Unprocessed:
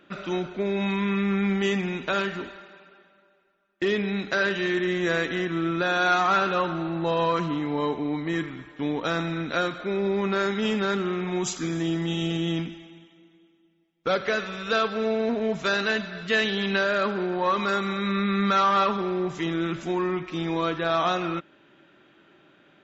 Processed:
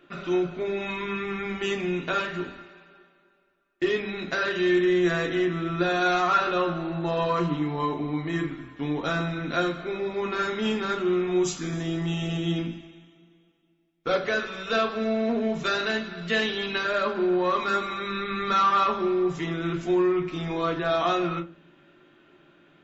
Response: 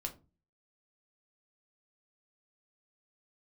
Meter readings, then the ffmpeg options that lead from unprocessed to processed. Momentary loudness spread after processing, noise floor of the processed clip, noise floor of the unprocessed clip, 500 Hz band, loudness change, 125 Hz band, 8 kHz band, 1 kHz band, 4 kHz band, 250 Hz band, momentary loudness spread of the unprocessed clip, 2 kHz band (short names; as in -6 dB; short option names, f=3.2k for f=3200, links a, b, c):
8 LU, -62 dBFS, -61 dBFS, +0.5 dB, -0.5 dB, -0.5 dB, n/a, -0.5 dB, -1.5 dB, -0.5 dB, 6 LU, -2.0 dB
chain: -filter_complex "[1:a]atrim=start_sample=2205[a];[0:a][a]afir=irnorm=-1:irlink=0"